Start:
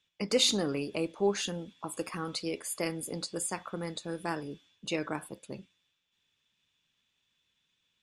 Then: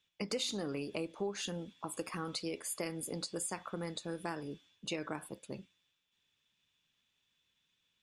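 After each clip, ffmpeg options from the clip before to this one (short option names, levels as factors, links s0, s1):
-af "acompressor=threshold=0.0251:ratio=5,volume=0.794"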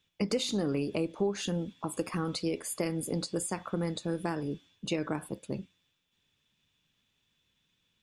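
-af "lowshelf=f=480:g=8.5,volume=1.33"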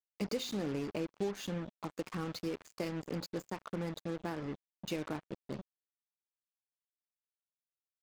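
-af "aresample=16000,aresample=44100,acrusher=bits=5:mix=0:aa=0.5,adynamicequalizer=threshold=0.00316:dfrequency=2700:dqfactor=0.7:tfrequency=2700:tqfactor=0.7:attack=5:release=100:ratio=0.375:range=2:mode=cutabove:tftype=highshelf,volume=0.501"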